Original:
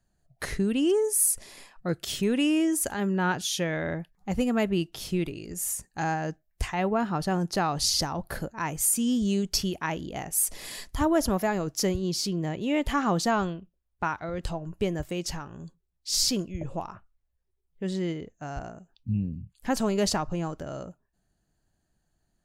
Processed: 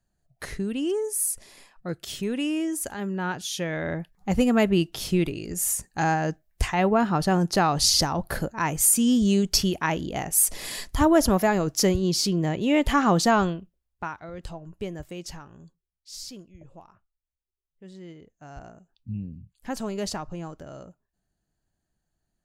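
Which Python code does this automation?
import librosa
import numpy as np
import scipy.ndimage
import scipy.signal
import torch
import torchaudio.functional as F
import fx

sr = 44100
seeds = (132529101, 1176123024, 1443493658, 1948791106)

y = fx.gain(x, sr, db=fx.line((3.4, -3.0), (4.29, 5.0), (13.49, 5.0), (14.14, -5.5), (15.52, -5.5), (16.2, -14.5), (17.94, -14.5), (18.69, -5.0)))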